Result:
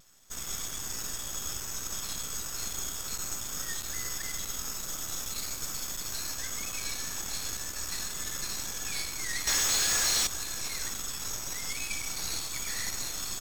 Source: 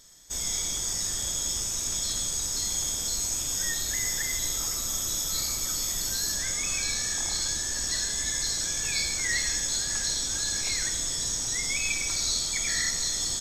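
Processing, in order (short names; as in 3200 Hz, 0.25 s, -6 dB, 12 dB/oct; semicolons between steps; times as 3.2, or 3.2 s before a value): half-wave rectifier; 9.47–10.27 overdrive pedal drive 30 dB, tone 7400 Hz, clips at -16 dBFS; vibrato 0.41 Hz 10 cents; gain -2.5 dB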